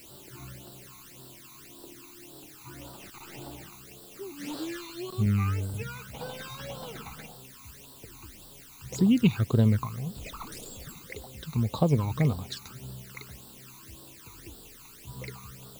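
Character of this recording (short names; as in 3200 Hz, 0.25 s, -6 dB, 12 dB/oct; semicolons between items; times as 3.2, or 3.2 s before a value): a quantiser's noise floor 8-bit, dither triangular; phasing stages 12, 1.8 Hz, lowest notch 530–2200 Hz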